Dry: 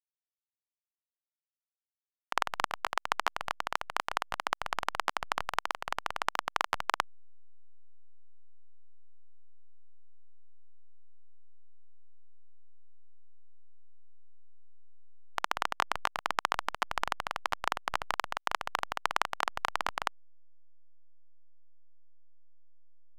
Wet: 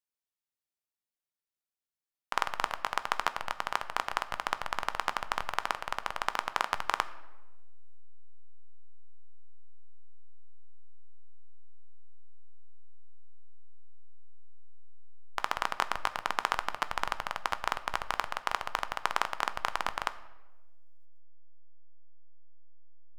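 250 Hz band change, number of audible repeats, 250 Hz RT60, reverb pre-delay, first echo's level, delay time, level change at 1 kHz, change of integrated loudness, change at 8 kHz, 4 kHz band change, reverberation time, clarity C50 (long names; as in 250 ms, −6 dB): +0.5 dB, no echo audible, 1.4 s, 5 ms, no echo audible, no echo audible, +0.5 dB, +0.5 dB, 0.0 dB, 0.0 dB, 1.1 s, 16.0 dB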